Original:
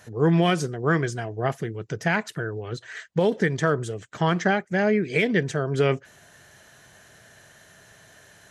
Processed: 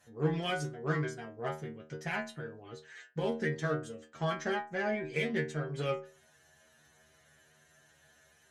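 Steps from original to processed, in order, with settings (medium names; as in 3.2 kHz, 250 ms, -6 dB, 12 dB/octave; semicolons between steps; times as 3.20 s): Chebyshev shaper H 7 -29 dB, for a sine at -9.5 dBFS; inharmonic resonator 75 Hz, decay 0.43 s, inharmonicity 0.002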